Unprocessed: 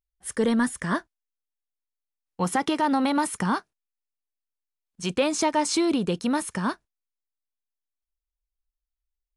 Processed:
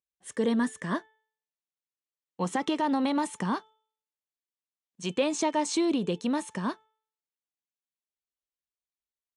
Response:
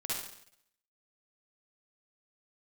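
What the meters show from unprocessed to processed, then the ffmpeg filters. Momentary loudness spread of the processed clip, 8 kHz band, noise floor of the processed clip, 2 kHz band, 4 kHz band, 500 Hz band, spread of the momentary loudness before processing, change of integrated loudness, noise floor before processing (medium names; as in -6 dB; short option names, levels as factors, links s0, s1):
8 LU, -6.0 dB, under -85 dBFS, -6.0 dB, -4.5 dB, -3.0 dB, 8 LU, -4.0 dB, under -85 dBFS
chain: -af "highpass=160,equalizer=f=790:t=q:w=4:g=-3,equalizer=f=1400:t=q:w=4:g=-8,equalizer=f=2200:t=q:w=4:g=-3,equalizer=f=5000:t=q:w=4:g=-7,lowpass=f=8200:w=0.5412,lowpass=f=8200:w=1.3066,bandreject=f=437.7:t=h:w=4,bandreject=f=875.4:t=h:w=4,bandreject=f=1313.1:t=h:w=4,bandreject=f=1750.8:t=h:w=4,bandreject=f=2188.5:t=h:w=4,bandreject=f=2626.2:t=h:w=4,bandreject=f=3063.9:t=h:w=4,bandreject=f=3501.6:t=h:w=4,volume=0.75"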